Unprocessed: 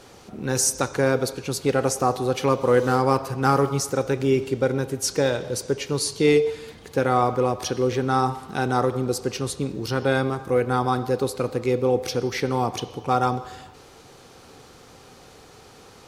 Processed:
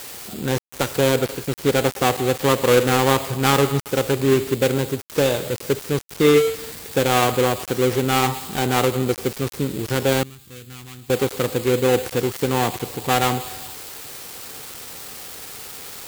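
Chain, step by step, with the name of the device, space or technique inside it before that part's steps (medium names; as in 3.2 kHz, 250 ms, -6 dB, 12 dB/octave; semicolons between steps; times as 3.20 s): budget class-D amplifier (dead-time distortion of 0.26 ms; zero-crossing glitches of -21.5 dBFS); 10.23–11.10 s: amplifier tone stack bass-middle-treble 6-0-2; trim +3.5 dB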